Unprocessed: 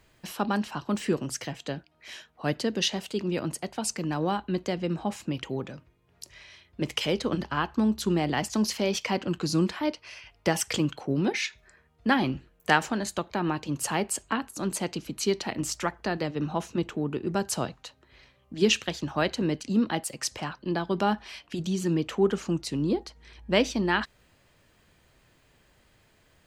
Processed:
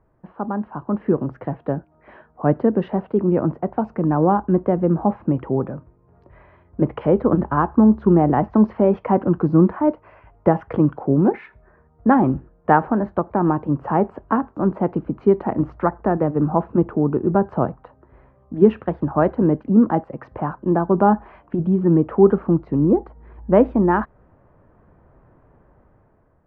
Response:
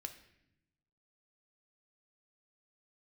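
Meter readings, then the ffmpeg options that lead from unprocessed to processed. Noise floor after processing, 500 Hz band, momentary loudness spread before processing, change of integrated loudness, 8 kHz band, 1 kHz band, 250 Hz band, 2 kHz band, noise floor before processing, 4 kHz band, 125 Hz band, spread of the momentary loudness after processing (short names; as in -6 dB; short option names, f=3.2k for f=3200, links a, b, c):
-57 dBFS, +10.5 dB, 10 LU, +9.0 dB, under -40 dB, +9.5 dB, +10.5 dB, -2.5 dB, -64 dBFS, under -20 dB, +10.5 dB, 10 LU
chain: -af "lowpass=f=1.2k:w=0.5412,lowpass=f=1.2k:w=1.3066,dynaudnorm=f=430:g=5:m=10dB,volume=1.5dB"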